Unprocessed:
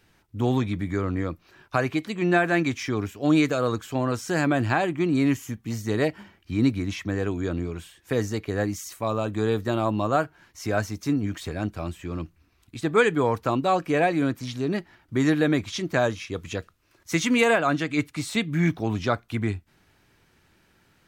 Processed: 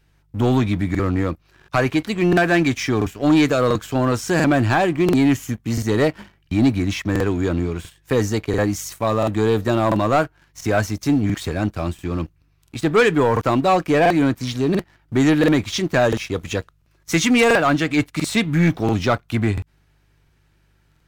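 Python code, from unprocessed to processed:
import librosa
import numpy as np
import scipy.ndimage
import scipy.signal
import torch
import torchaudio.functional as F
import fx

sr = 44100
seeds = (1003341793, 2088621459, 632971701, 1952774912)

y = fx.dmg_buzz(x, sr, base_hz=50.0, harmonics=3, level_db=-57.0, tilt_db=-4, odd_only=False)
y = fx.leveller(y, sr, passes=2)
y = fx.buffer_crackle(y, sr, first_s=0.9, period_s=0.69, block=2048, kind='repeat')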